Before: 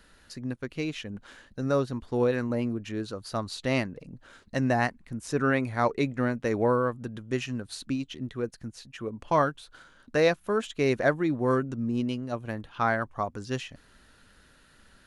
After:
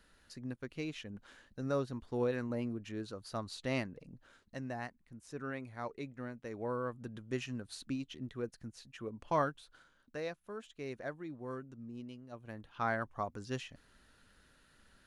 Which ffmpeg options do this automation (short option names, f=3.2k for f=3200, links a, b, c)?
-af "volume=10.5dB,afade=t=out:st=4.12:d=0.52:silence=0.398107,afade=t=in:st=6.57:d=0.55:silence=0.375837,afade=t=out:st=9.49:d=0.72:silence=0.316228,afade=t=in:st=12.27:d=0.71:silence=0.298538"